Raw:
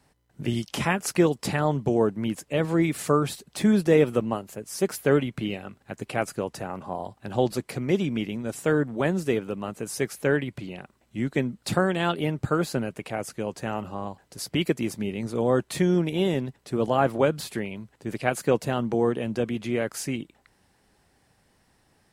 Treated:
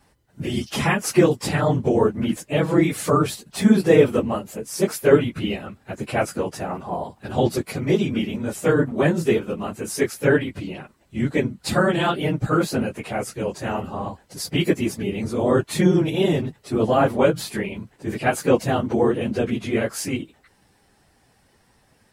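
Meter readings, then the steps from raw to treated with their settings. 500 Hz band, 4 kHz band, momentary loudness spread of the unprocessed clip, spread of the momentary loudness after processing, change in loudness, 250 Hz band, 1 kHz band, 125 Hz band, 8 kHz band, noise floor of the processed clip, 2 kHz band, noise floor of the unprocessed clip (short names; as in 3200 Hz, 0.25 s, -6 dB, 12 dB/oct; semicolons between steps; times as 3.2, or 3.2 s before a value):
+5.0 dB, +4.5 dB, 11 LU, 12 LU, +4.5 dB, +4.5 dB, +4.5 dB, +4.5 dB, +4.5 dB, -61 dBFS, +4.5 dB, -66 dBFS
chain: phase scrambler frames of 50 ms; gain +4.5 dB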